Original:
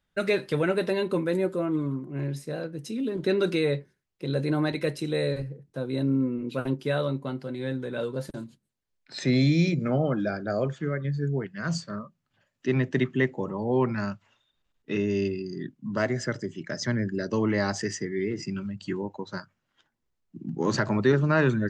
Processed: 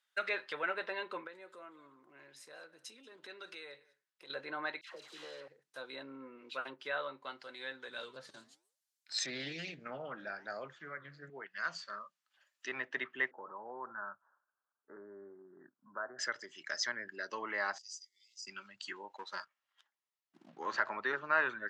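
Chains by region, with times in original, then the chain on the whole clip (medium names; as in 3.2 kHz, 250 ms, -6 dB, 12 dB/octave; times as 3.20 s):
1.27–4.30 s: compression 2.5:1, threshold -38 dBFS + treble shelf 3.2 kHz -8 dB + delay 187 ms -22 dB
4.81–5.48 s: median filter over 25 samples + compression, threshold -29 dBFS + phase dispersion lows, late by 126 ms, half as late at 1.1 kHz
7.88–11.30 s: tone controls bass +13 dB, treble +10 dB + flange 1.1 Hz, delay 3.6 ms, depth 9.5 ms, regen -89% + loudspeaker Doppler distortion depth 0.3 ms
13.31–16.19 s: compression 2:1, threshold -30 dBFS + steep low-pass 1.6 kHz 96 dB/octave
17.78–18.47 s: inverse Chebyshev high-pass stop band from 1.8 kHz, stop band 50 dB + compression 4:1, threshold -45 dBFS
19.16–20.59 s: treble shelf 4.6 kHz -11.5 dB + band-stop 1.5 kHz, Q 8.1 + waveshaping leveller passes 1
whole clip: low-pass that closes with the level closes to 2.1 kHz, closed at -23.5 dBFS; high-pass 1.3 kHz 12 dB/octave; peaking EQ 2.3 kHz -3 dB 0.62 oct; trim +1.5 dB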